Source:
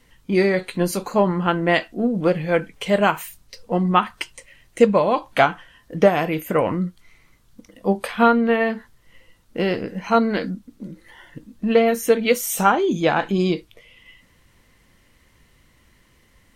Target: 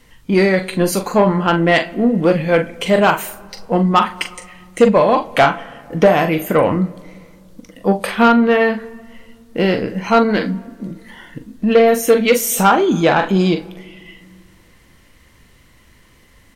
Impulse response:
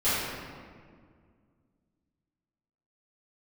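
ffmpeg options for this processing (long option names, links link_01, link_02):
-filter_complex "[0:a]asplit=2[link_01][link_02];[link_02]adelay=42,volume=-9dB[link_03];[link_01][link_03]amix=inputs=2:normalize=0,asplit=2[link_04][link_05];[1:a]atrim=start_sample=2205[link_06];[link_05][link_06]afir=irnorm=-1:irlink=0,volume=-33.5dB[link_07];[link_04][link_07]amix=inputs=2:normalize=0,acontrast=82,volume=-1dB"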